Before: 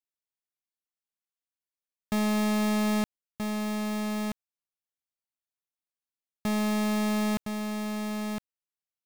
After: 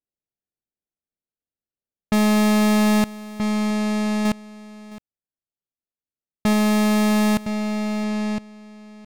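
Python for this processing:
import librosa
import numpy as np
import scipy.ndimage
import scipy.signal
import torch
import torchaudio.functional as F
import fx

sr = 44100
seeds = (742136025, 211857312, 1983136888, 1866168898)

y = fx.wiener(x, sr, points=41)
y = fx.env_lowpass(y, sr, base_hz=1900.0, full_db=-27.5)
y = fx.leveller(y, sr, passes=2, at=(4.25, 6.53))
y = y + 10.0 ** (-18.5 / 20.0) * np.pad(y, (int(664 * sr / 1000.0), 0))[:len(y)]
y = y * 10.0 ** (9.0 / 20.0)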